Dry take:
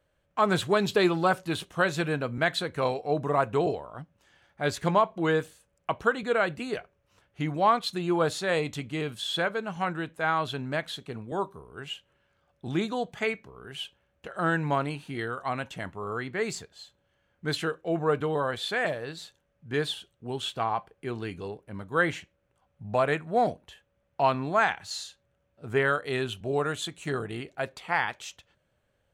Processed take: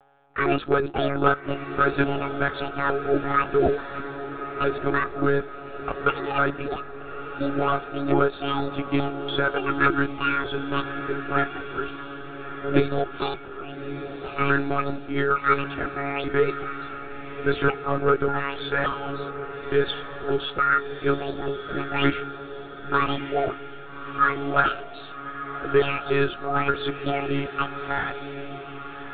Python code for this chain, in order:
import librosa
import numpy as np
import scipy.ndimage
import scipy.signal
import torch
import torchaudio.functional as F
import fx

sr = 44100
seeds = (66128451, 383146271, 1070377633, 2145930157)

y = fx.pitch_trill(x, sr, semitones=10.0, every_ms=290)
y = fx.low_shelf(y, sr, hz=370.0, db=-10.0)
y = fx.rider(y, sr, range_db=3, speed_s=0.5)
y = np.clip(y, -10.0 ** (-24.0 / 20.0), 10.0 ** (-24.0 / 20.0))
y = fx.notch_comb(y, sr, f0_hz=1000.0)
y = fx.small_body(y, sr, hz=(330.0, 1300.0), ring_ms=20, db=17)
y = y + 10.0 ** (-53.0 / 20.0) * np.sin(2.0 * np.pi * 790.0 * np.arange(len(y)) / sr)
y = fx.lpc_monotone(y, sr, seeds[0], pitch_hz=140.0, order=16)
y = fx.echo_diffused(y, sr, ms=1247, feedback_pct=46, wet_db=-10)